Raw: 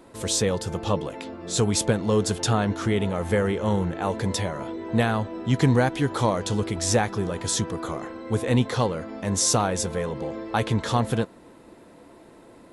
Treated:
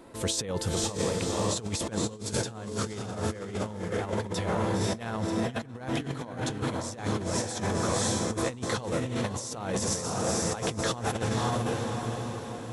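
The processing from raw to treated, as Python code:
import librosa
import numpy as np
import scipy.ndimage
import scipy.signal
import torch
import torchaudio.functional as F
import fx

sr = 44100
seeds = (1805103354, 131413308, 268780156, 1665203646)

y = fx.echo_diffused(x, sr, ms=540, feedback_pct=49, wet_db=-3.0)
y = fx.over_compress(y, sr, threshold_db=-26.0, ratio=-0.5)
y = y * librosa.db_to_amplitude(-4.0)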